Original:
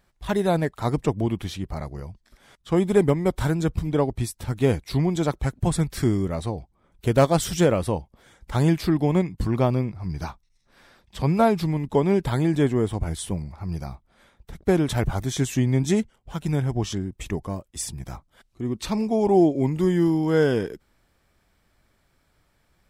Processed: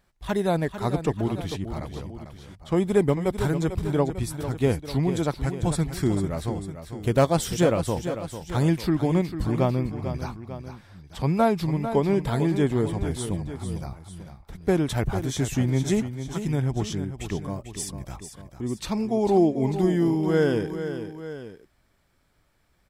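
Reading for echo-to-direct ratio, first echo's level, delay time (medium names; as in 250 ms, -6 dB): -8.5 dB, -10.0 dB, 447 ms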